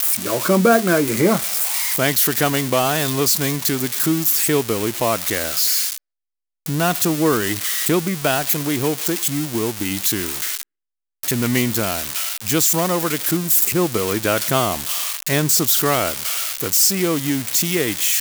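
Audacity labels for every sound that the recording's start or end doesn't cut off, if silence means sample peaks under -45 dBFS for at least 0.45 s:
6.660000	10.630000	sound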